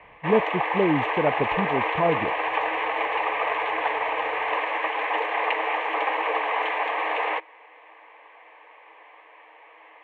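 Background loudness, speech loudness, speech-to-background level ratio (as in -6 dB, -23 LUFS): -25.5 LUFS, -26.5 LUFS, -1.0 dB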